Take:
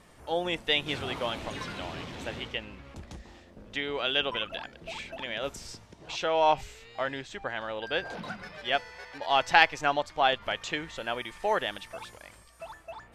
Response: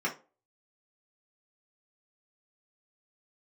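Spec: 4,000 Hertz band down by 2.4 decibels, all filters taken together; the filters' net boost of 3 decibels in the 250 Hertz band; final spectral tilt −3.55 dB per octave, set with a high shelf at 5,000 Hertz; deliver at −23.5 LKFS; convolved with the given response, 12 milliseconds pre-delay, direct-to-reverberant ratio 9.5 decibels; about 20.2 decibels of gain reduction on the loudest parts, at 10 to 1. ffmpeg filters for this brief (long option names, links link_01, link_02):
-filter_complex "[0:a]equalizer=frequency=250:width_type=o:gain=4,equalizer=frequency=4000:width_type=o:gain=-6.5,highshelf=frequency=5000:gain=7.5,acompressor=threshold=-35dB:ratio=10,asplit=2[link_01][link_02];[1:a]atrim=start_sample=2205,adelay=12[link_03];[link_02][link_03]afir=irnorm=-1:irlink=0,volume=-17.5dB[link_04];[link_01][link_04]amix=inputs=2:normalize=0,volume=17dB"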